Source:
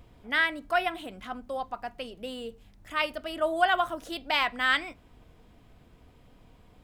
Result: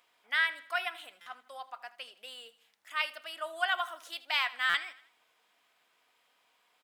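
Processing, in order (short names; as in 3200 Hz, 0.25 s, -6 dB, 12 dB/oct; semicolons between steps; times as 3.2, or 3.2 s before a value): HPF 1200 Hz 12 dB/oct; on a send: feedback echo 80 ms, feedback 44%, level -18 dB; on the sum: stuck buffer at 1.21/4.69, samples 256, times 8; gain -2 dB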